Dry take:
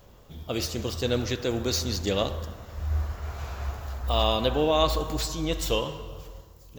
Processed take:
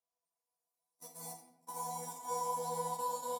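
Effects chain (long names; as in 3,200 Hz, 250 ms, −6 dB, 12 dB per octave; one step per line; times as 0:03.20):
in parallel at −2.5 dB: compressor whose output falls as the input rises −32 dBFS, ratio −0.5
on the sum: resonators tuned to a chord E2 fifth, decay 0.52 s
extreme stretch with random phases 8.8×, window 1.00 s, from 0:00.47
loudspeakers that aren't time-aligned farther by 52 metres −10 dB, 91 metres −7 dB
noise reduction from a noise print of the clip's start 8 dB
noise gate −38 dBFS, range −43 dB
high-pass filter 370 Hz 12 dB per octave
wrong playback speed 7.5 ips tape played at 15 ips
flat-topped bell 2,000 Hz −11 dB
rectangular room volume 200 cubic metres, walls mixed, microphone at 0.79 metres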